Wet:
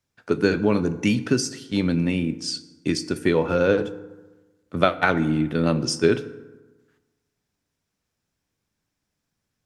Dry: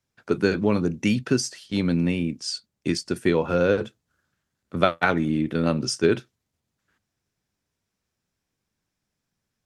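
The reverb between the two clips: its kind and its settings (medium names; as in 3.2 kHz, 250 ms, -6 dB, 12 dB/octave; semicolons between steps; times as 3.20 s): FDN reverb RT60 1.2 s, low-frequency decay 1.1×, high-frequency decay 0.55×, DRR 12 dB; trim +1 dB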